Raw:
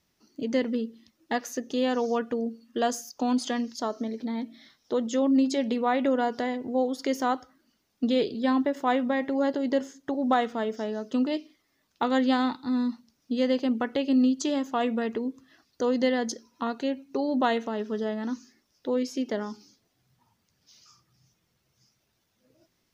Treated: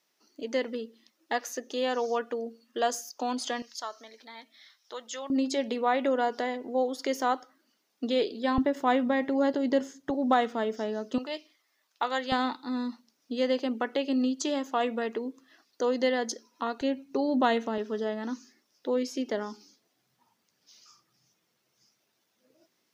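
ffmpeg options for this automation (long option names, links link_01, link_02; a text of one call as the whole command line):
ffmpeg -i in.wav -af "asetnsamples=nb_out_samples=441:pad=0,asendcmd='3.62 highpass f 1100;5.3 highpass f 330;8.58 highpass f 84;10.1 highpass f 190;11.18 highpass f 660;12.32 highpass f 320;16.81 highpass f 95;17.78 highpass f 250',highpass=410" out.wav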